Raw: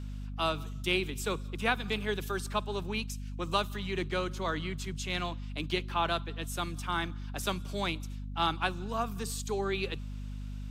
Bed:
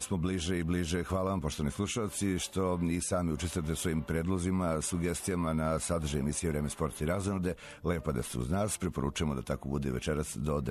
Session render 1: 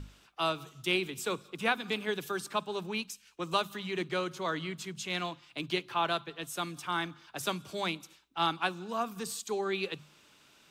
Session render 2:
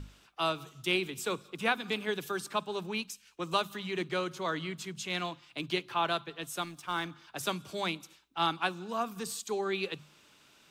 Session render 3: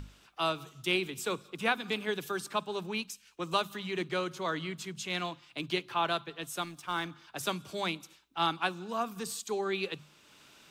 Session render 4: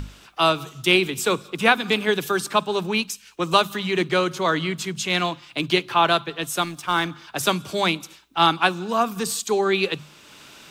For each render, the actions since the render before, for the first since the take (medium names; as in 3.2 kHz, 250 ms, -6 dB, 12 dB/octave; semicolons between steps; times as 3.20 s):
hum notches 50/100/150/200/250 Hz
6.62–7.05 s: companding laws mixed up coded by A
upward compressor, threshold -51 dBFS
trim +12 dB